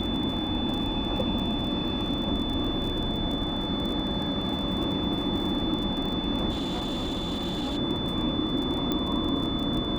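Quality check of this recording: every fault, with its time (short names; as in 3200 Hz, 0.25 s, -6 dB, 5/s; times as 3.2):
crackle 33/s -32 dBFS
tone 3500 Hz -33 dBFS
6.5–7.78 clipped -26 dBFS
8.92 pop -14 dBFS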